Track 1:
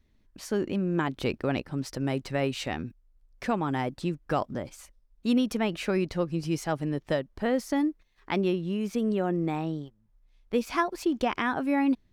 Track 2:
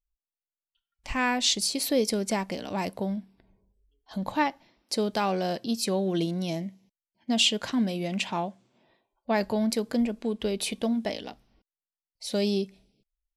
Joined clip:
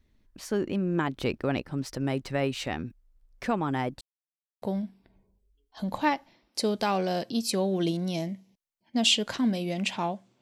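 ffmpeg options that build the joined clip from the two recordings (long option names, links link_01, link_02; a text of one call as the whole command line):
ffmpeg -i cue0.wav -i cue1.wav -filter_complex "[0:a]apad=whole_dur=10.41,atrim=end=10.41,asplit=2[link_01][link_02];[link_01]atrim=end=4.01,asetpts=PTS-STARTPTS,afade=type=out:start_time=4.006:duration=0.004:curve=hsin[link_03];[link_02]atrim=start=4.01:end=4.62,asetpts=PTS-STARTPTS,volume=0[link_04];[1:a]atrim=start=2.96:end=8.75,asetpts=PTS-STARTPTS,afade=type=in:duration=0.004:curve=hsin[link_05];[link_03][link_04][link_05]concat=n=3:v=0:a=1" out.wav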